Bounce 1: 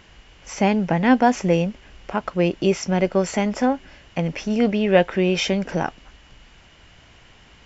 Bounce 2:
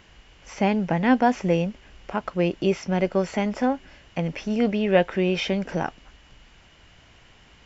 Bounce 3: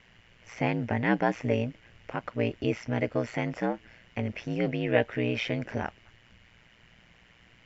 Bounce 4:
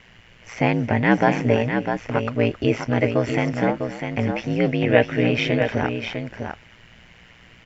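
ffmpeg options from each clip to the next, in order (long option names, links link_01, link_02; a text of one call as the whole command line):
ffmpeg -i in.wav -filter_complex "[0:a]acrossover=split=4900[link_01][link_02];[link_02]acompressor=threshold=-48dB:ratio=4:attack=1:release=60[link_03];[link_01][link_03]amix=inputs=2:normalize=0,volume=-3dB" out.wav
ffmpeg -i in.wav -af "equalizer=frequency=125:width_type=o:width=1:gain=9,equalizer=frequency=500:width_type=o:width=1:gain=4,equalizer=frequency=2000:width_type=o:width=1:gain=9,aeval=exprs='val(0)*sin(2*PI*59*n/s)':channel_layout=same,volume=-7dB" out.wav
ffmpeg -i in.wav -af "aecho=1:1:268|651:0.158|0.473,volume=8dB" out.wav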